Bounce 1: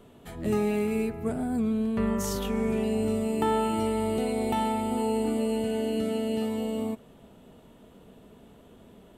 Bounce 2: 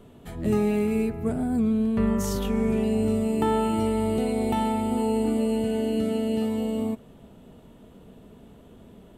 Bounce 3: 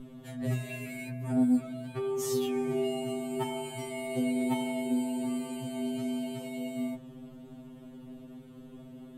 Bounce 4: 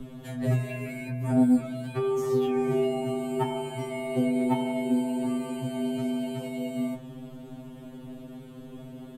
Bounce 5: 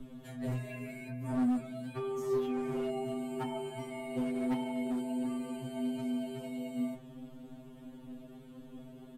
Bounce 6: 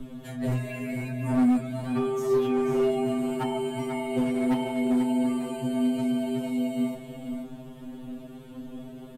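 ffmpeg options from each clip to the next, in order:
-af "lowshelf=f=300:g=6"
-af "aeval=exprs='val(0)+0.0158*(sin(2*PI*50*n/s)+sin(2*PI*2*50*n/s)/2+sin(2*PI*3*50*n/s)/3+sin(2*PI*4*50*n/s)/4+sin(2*PI*5*50*n/s)/5)':c=same,afftfilt=real='re*2.45*eq(mod(b,6),0)':imag='im*2.45*eq(mod(b,6),0)':win_size=2048:overlap=0.75"
-filter_complex "[0:a]acrossover=split=120|520|2100[s0][s1][s2][s3];[s3]acompressor=threshold=0.00158:ratio=6[s4];[s0][s1][s2][s4]amix=inputs=4:normalize=0,asplit=2[s5][s6];[s6]adelay=22,volume=0.282[s7];[s5][s7]amix=inputs=2:normalize=0,volume=2.11"
-af "asoftclip=type=hard:threshold=0.0841,flanger=delay=3.2:depth=2:regen=56:speed=1.5:shape=triangular,volume=0.668"
-af "aecho=1:1:491:0.398,volume=2.51"

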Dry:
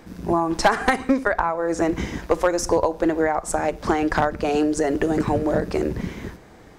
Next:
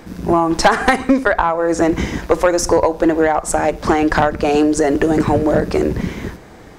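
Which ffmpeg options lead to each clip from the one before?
-af "acontrast=86"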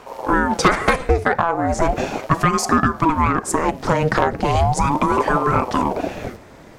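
-af "aeval=exprs='val(0)*sin(2*PI*450*n/s+450*0.65/0.37*sin(2*PI*0.37*n/s))':c=same"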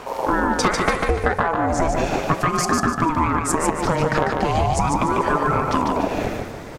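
-filter_complex "[0:a]acompressor=threshold=0.0501:ratio=3,asplit=2[s0][s1];[s1]aecho=0:1:147|294|441|588:0.631|0.202|0.0646|0.0207[s2];[s0][s2]amix=inputs=2:normalize=0,volume=2"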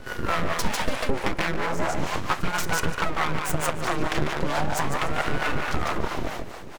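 -filter_complex "[0:a]aeval=exprs='abs(val(0))':c=same,acrossover=split=480[s0][s1];[s0]aeval=exprs='val(0)*(1-0.7/2+0.7/2*cos(2*PI*4.5*n/s))':c=same[s2];[s1]aeval=exprs='val(0)*(1-0.7/2-0.7/2*cos(2*PI*4.5*n/s))':c=same[s3];[s2][s3]amix=inputs=2:normalize=0"

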